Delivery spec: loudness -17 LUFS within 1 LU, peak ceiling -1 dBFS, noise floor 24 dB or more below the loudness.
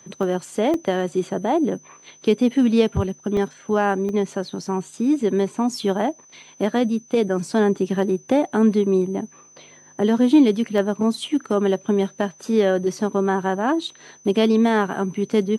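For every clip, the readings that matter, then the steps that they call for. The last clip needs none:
dropouts 6; longest dropout 1.6 ms; steady tone 6.1 kHz; tone level -48 dBFS; loudness -21.0 LUFS; peak level -6.0 dBFS; loudness target -17.0 LUFS
-> interpolate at 0.23/0.74/3.37/4.09/5.83/10.78 s, 1.6 ms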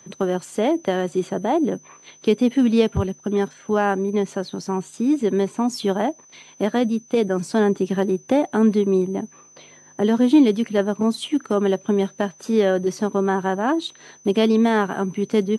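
dropouts 0; steady tone 6.1 kHz; tone level -48 dBFS
-> band-stop 6.1 kHz, Q 30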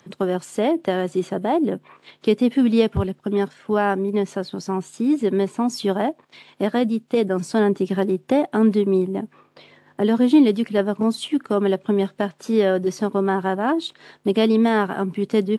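steady tone not found; loudness -21.0 LUFS; peak level -6.0 dBFS; loudness target -17.0 LUFS
-> trim +4 dB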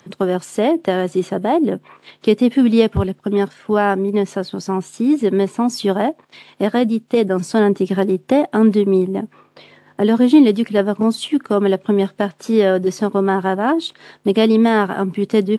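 loudness -17.0 LUFS; peak level -2.0 dBFS; noise floor -54 dBFS

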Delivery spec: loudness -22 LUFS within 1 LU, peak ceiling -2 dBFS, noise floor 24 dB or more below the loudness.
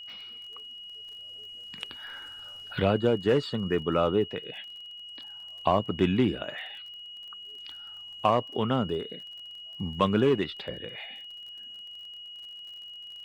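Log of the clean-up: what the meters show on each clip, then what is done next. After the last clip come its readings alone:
tick rate 34 per s; steady tone 2.9 kHz; tone level -41 dBFS; loudness -29.5 LUFS; peak level -10.0 dBFS; loudness target -22.0 LUFS
-> de-click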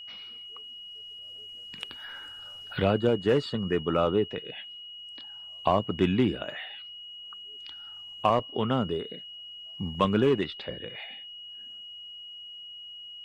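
tick rate 0 per s; steady tone 2.9 kHz; tone level -41 dBFS
-> band-stop 2.9 kHz, Q 30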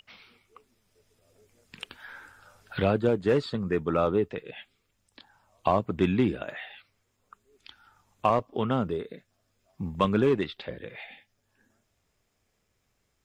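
steady tone not found; loudness -27.5 LUFS; peak level -10.0 dBFS; loudness target -22.0 LUFS
-> trim +5.5 dB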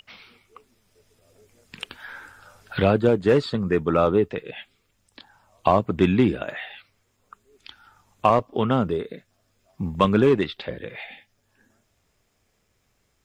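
loudness -22.0 LUFS; peak level -4.5 dBFS; noise floor -70 dBFS

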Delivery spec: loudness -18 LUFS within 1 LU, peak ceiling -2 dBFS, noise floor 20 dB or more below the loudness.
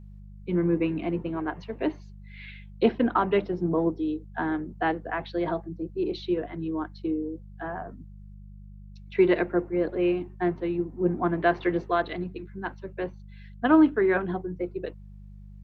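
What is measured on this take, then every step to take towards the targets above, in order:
hum 50 Hz; highest harmonic 200 Hz; hum level -42 dBFS; loudness -27.5 LUFS; peak level -7.5 dBFS; loudness target -18.0 LUFS
-> de-hum 50 Hz, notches 4; trim +9.5 dB; peak limiter -2 dBFS

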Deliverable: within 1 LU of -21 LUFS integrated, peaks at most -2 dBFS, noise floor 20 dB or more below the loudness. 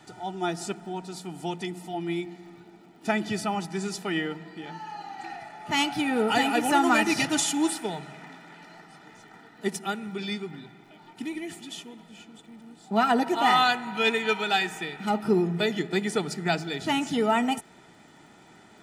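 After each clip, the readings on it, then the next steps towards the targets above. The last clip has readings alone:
tick rate 45 per s; loudness -26.5 LUFS; peak level -10.0 dBFS; loudness target -21.0 LUFS
-> de-click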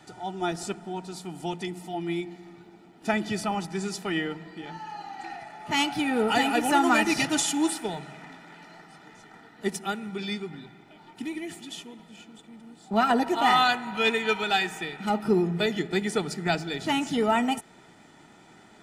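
tick rate 0.32 per s; loudness -26.5 LUFS; peak level -10.0 dBFS; loudness target -21.0 LUFS
-> trim +5.5 dB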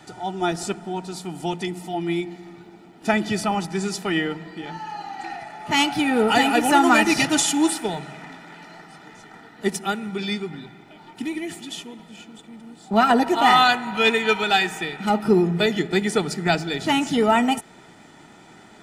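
loudness -21.0 LUFS; peak level -4.5 dBFS; noise floor -48 dBFS

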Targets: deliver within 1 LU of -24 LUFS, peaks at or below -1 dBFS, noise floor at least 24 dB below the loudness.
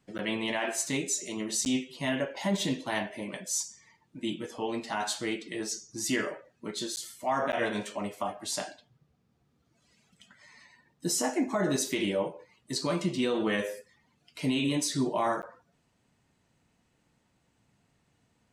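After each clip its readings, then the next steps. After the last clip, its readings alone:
dropouts 5; longest dropout 9.8 ms; loudness -31.5 LUFS; peak level -18.5 dBFS; loudness target -24.0 LUFS
-> interpolate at 0.18/1.65/6.96/7.52/15.42 s, 9.8 ms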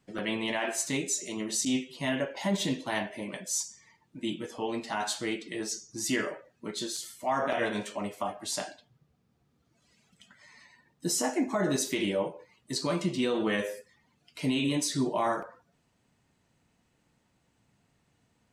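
dropouts 0; loudness -31.5 LUFS; peak level -17.0 dBFS; loudness target -24.0 LUFS
-> trim +7.5 dB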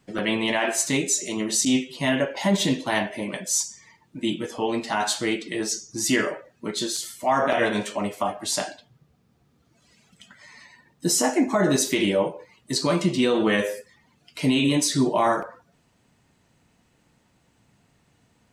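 loudness -24.0 LUFS; peak level -9.5 dBFS; noise floor -65 dBFS

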